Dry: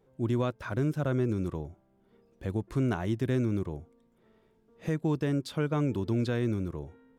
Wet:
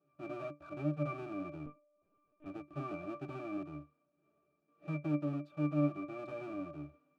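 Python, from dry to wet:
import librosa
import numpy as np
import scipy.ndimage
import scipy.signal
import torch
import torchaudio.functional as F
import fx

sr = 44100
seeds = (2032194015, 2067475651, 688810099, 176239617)

y = fx.halfwave_hold(x, sr)
y = scipy.signal.sosfilt(scipy.signal.butter(2, 290.0, 'highpass', fs=sr, output='sos'), y)
y = fx.octave_resonator(y, sr, note='D', decay_s=0.19)
y = fx.lpc_vocoder(y, sr, seeds[0], excitation='pitch_kept', order=16, at=(1.66, 2.46))
y = fx.upward_expand(y, sr, threshold_db=-35.0, expansion=1.5, at=(5.12, 6.19))
y = y * 10.0 ** (3.0 / 20.0)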